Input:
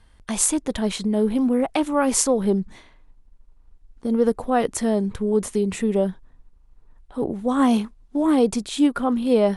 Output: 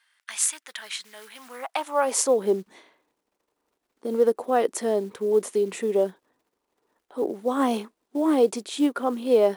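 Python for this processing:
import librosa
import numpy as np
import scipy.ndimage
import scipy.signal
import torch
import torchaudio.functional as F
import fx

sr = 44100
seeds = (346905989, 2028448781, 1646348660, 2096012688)

y = fx.quant_float(x, sr, bits=4)
y = fx.filter_sweep_highpass(y, sr, from_hz=1700.0, to_hz=380.0, start_s=1.33, end_s=2.35, q=1.6)
y = y * 10.0 ** (-3.5 / 20.0)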